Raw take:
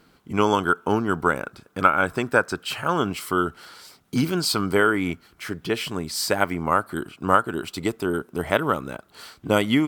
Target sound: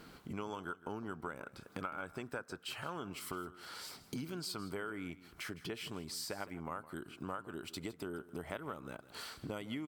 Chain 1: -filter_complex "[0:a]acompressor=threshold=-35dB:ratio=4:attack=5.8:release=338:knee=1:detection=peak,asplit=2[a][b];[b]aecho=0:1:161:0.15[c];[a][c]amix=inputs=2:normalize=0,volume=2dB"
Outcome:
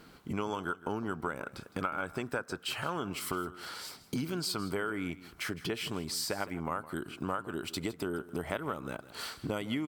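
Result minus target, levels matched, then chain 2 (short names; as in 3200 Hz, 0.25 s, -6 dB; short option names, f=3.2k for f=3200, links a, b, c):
compressor: peak gain reduction -7.5 dB
-filter_complex "[0:a]acompressor=threshold=-45dB:ratio=4:attack=5.8:release=338:knee=1:detection=peak,asplit=2[a][b];[b]aecho=0:1:161:0.15[c];[a][c]amix=inputs=2:normalize=0,volume=2dB"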